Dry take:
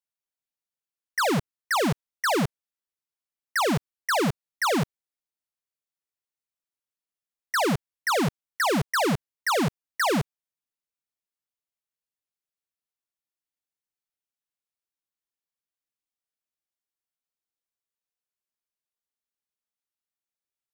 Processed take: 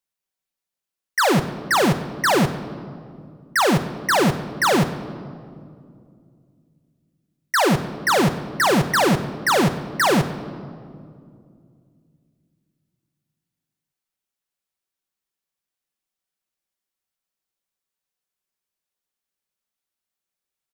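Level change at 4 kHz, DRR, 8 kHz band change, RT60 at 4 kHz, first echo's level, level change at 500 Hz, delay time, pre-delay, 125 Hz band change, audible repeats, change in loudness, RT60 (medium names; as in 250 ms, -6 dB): +6.0 dB, 7.5 dB, +6.0 dB, 1.3 s, -20.0 dB, +6.5 dB, 92 ms, 5 ms, +7.0 dB, 1, +6.0 dB, 2.3 s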